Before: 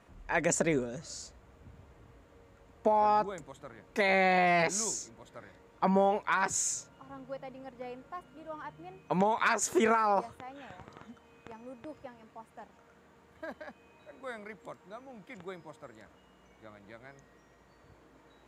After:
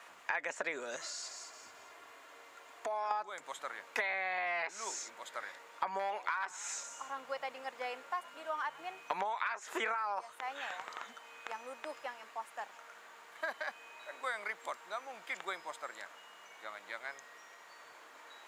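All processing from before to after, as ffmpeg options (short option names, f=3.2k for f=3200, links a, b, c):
-filter_complex "[0:a]asettb=1/sr,asplit=3[a][b][c];[a]atrim=end=0.964[d];[b]atrim=start=0.96:end=3.11,asetpts=PTS-STARTPTS,afade=t=in:d=0.004:c=qsin,afade=t=out:st=2.146:d=0.004:c=qsin,aecho=1:1:2.9:0.43,atrim=end_sample=94815,aecho=1:1:218|436|654:0.158|0.0539|0.0183,atrim=end_sample=94815,acompressor=threshold=-43dB:ratio=2.5:attack=3.2:release=140:knee=1:detection=peak[e];[c]atrim=start=3.106[f];[d][e]acrossfade=d=0.004:c1=hsin:c2=qsin[g];[g][f]acrossfade=d=0.004:c1=qsin:c2=hsin,asettb=1/sr,asplit=3[h][i][j];[h]atrim=end=5.994[k];[i]atrim=start=5.99:end=9.19,asetpts=PTS-STARTPTS,afade=t=in:d=0.004:c=qsin,afade=t=out:st=3.196:d=0.004:c=qsin,asoftclip=type=hard:threshold=-20.5dB,asplit=4[l][m][n][o];[m]adelay=109,afreqshift=-53,volume=-23dB[p];[n]adelay=218,afreqshift=-106,volume=-29.7dB[q];[o]adelay=327,afreqshift=-159,volume=-36.5dB[r];[l][p][q][r]amix=inputs=4:normalize=0,atrim=end_sample=141120[s];[j]atrim=start=9.186[t];[k][s]acrossfade=d=0.004:c1=hsin:c2=qsin[u];[u][t]acrossfade=d=0.004:c1=qsin:c2=hsin,acrossover=split=3200[v][w];[w]acompressor=threshold=-54dB:ratio=4:attack=1:release=60[x];[v][x]amix=inputs=2:normalize=0,highpass=990,acompressor=threshold=-44dB:ratio=12,volume=11.5dB"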